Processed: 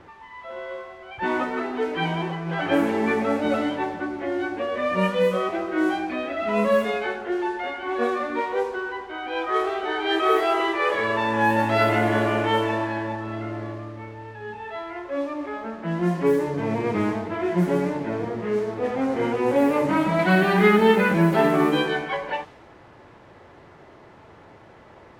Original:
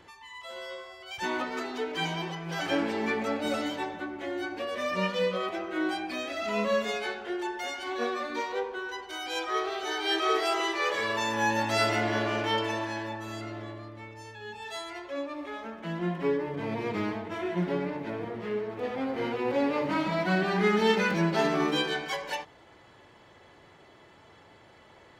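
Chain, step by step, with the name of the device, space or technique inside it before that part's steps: 20.19–20.77 high shelf 2700 Hz +11 dB; air absorption 400 m; cassette deck with a dynamic noise filter (white noise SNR 23 dB; low-pass opened by the level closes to 1600 Hz, open at -23.5 dBFS); gain +8.5 dB

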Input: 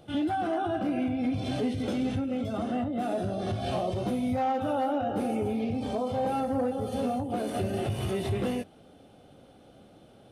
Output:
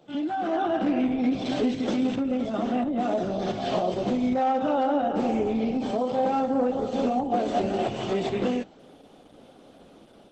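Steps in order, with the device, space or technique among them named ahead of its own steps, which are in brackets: 7.15–8.29 dynamic EQ 750 Hz, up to +6 dB, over -48 dBFS, Q 4.3; video call (HPF 170 Hz 24 dB/oct; AGC gain up to 6 dB; gain -1 dB; Opus 12 kbps 48000 Hz)

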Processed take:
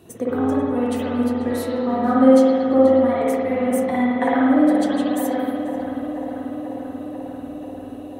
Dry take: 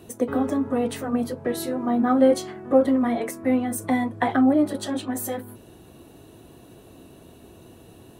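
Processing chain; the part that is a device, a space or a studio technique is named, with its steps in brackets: dub delay into a spring reverb (darkening echo 0.488 s, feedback 80%, low-pass 2500 Hz, level -9.5 dB; spring tank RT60 1.5 s, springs 53 ms, chirp 65 ms, DRR -5 dB); gain -3 dB

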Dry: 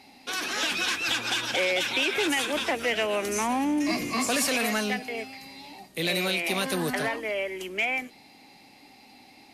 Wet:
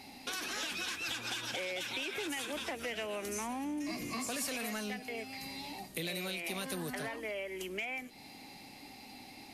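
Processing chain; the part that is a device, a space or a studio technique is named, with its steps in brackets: ASMR close-microphone chain (low shelf 160 Hz +7 dB; compressor 4:1, threshold -39 dBFS, peak gain reduction 14 dB; high shelf 7200 Hz +6.5 dB)

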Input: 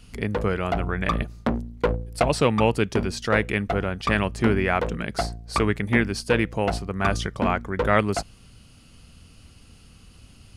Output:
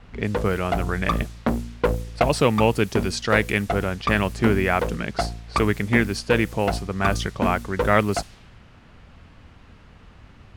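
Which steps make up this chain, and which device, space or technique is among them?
3.01–3.64 high shelf 3400 Hz +6 dB; cassette deck with a dynamic noise filter (white noise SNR 23 dB; low-pass opened by the level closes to 1600 Hz, open at -19.5 dBFS); gain +1.5 dB

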